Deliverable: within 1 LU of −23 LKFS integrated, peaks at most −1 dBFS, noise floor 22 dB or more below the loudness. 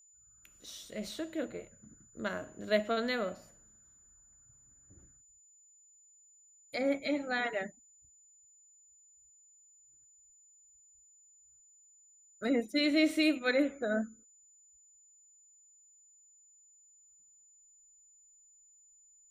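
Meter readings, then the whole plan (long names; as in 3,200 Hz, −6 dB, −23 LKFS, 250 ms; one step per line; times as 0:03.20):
interfering tone 7,000 Hz; level of the tone −60 dBFS; integrated loudness −33.0 LKFS; sample peak −15.5 dBFS; target loudness −23.0 LKFS
→ notch filter 7,000 Hz, Q 30
level +10 dB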